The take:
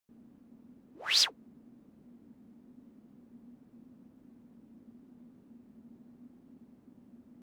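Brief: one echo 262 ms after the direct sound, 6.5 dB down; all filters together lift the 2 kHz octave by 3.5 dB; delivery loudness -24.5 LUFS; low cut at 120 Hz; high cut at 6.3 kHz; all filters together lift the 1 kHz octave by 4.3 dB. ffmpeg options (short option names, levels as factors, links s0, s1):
-af "highpass=120,lowpass=6300,equalizer=f=1000:t=o:g=4.5,equalizer=f=2000:t=o:g=3.5,aecho=1:1:262:0.473,volume=1.58"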